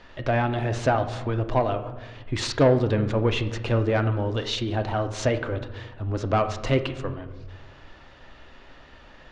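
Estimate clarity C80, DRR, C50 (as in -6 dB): 13.5 dB, 7.5 dB, 11.5 dB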